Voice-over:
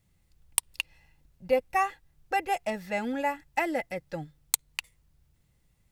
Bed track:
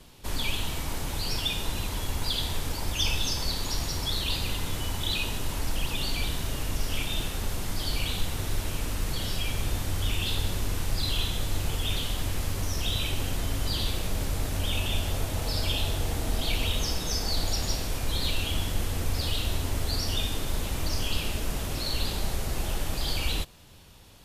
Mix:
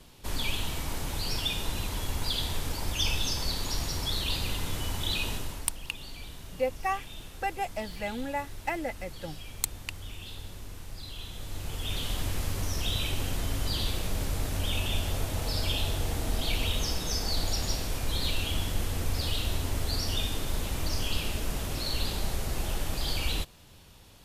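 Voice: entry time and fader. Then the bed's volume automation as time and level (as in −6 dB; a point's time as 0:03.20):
5.10 s, −4.0 dB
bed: 0:05.33 −1.5 dB
0:05.78 −13.5 dB
0:11.15 −13.5 dB
0:12.12 −1.5 dB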